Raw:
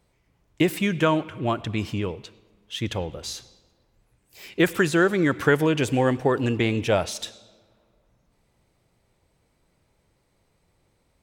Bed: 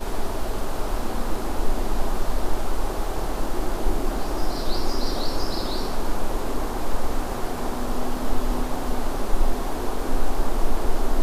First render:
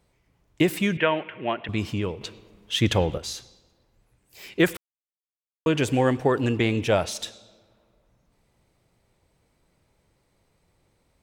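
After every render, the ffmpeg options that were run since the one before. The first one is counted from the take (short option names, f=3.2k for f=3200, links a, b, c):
-filter_complex "[0:a]asettb=1/sr,asplit=3[a][b][c];[a]atrim=end=0.974[d];[b]atrim=start=0.97:end=1.69,asetpts=PTS-STARTPTS,afade=t=in:d=0.004:c=qsin,afade=t=out:st=0.716:d=0.004:c=qsin,highpass=260,equalizer=f=300:t=q:w=4:g=-7,equalizer=f=1.2k:t=q:w=4:g=-6,equalizer=f=1.9k:t=q:w=4:g=9,equalizer=f=2.8k:t=q:w=4:g=6,lowpass=f=3.1k:w=0.5412,lowpass=f=3.1k:w=1.3066[e];[c]atrim=start=1.686[f];[d][e]acrossfade=d=0.004:c1=hsin:c2=qsin[g];[g][f]acrossfade=d=0.004:c1=qsin:c2=hsin,asettb=1/sr,asplit=3[h][i][j];[h]atrim=end=2.214[k];[i]atrim=start=2.21:end=3.18,asetpts=PTS-STARTPTS,afade=t=in:d=0.004:c=qsin,afade=t=out:st=0.966:d=0.004:c=qsin,acontrast=82[l];[j]atrim=start=3.176[m];[k][l]acrossfade=d=0.004:c1=hsin:c2=qsin[n];[n][m]acrossfade=d=0.004:c1=qsin:c2=hsin,asplit=3[o][p][q];[o]atrim=end=4.77,asetpts=PTS-STARTPTS,afade=t=out:st=4.766:d=0.004:c=hsin[r];[p]atrim=start=4.77:end=5.66,asetpts=PTS-STARTPTS,volume=0[s];[q]atrim=start=5.66,asetpts=PTS-STARTPTS,afade=t=in:d=0.004:c=hsin[t];[r][s][t]concat=n=3:v=0:a=1"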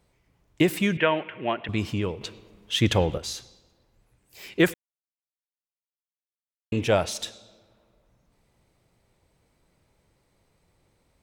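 -filter_complex "[0:a]asplit=3[a][b][c];[a]atrim=end=4.74,asetpts=PTS-STARTPTS,afade=t=out:st=4.736:d=0.004:c=hsin[d];[b]atrim=start=4.74:end=6.72,asetpts=PTS-STARTPTS,volume=0[e];[c]atrim=start=6.72,asetpts=PTS-STARTPTS,afade=t=in:d=0.004:c=hsin[f];[d][e][f]concat=n=3:v=0:a=1"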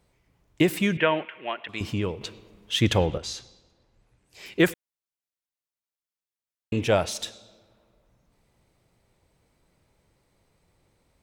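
-filter_complex "[0:a]asettb=1/sr,asplit=3[a][b][c];[a]atrim=end=1.254[d];[b]atrim=start=1.25:end=1.81,asetpts=PTS-STARTPTS,afade=t=in:d=0.004:c=qsin,afade=t=out:st=0.556:d=0.004:c=qsin,highpass=f=970:p=1[e];[c]atrim=start=1.806[f];[d][e]acrossfade=d=0.004:c1=hsin:c2=qsin[g];[g][f]acrossfade=d=0.004:c1=qsin:c2=hsin,asettb=1/sr,asplit=3[h][i][j];[h]atrim=end=3.064[k];[i]atrim=start=3.06:end=4.46,asetpts=PTS-STARTPTS,afade=t=in:d=0.004:c=qsin,afade=t=out:st=1.396:d=0.004:c=qsin,lowpass=7.8k[l];[j]atrim=start=4.456[m];[k][l]acrossfade=d=0.004:c1=hsin:c2=qsin[n];[n][m]acrossfade=d=0.004:c1=qsin:c2=hsin"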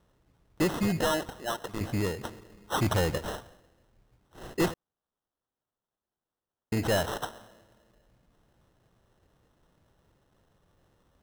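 -af "acrusher=samples=19:mix=1:aa=0.000001,asoftclip=type=tanh:threshold=-21dB"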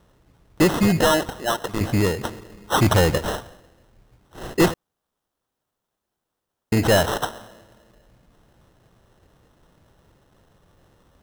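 -af "volume=9.5dB"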